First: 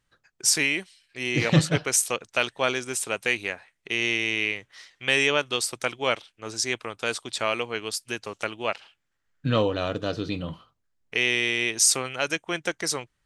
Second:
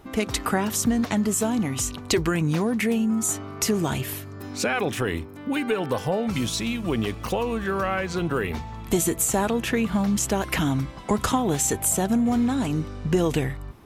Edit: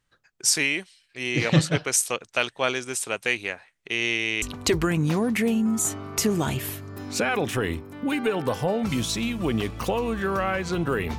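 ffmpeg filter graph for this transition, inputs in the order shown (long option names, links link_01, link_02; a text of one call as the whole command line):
ffmpeg -i cue0.wav -i cue1.wav -filter_complex "[0:a]apad=whole_dur=11.18,atrim=end=11.18,atrim=end=4.422[link_01];[1:a]atrim=start=1.858:end=8.62[link_02];[link_01][link_02]acrossfade=duration=0.004:curve1=hsin:curve2=hsin" out.wav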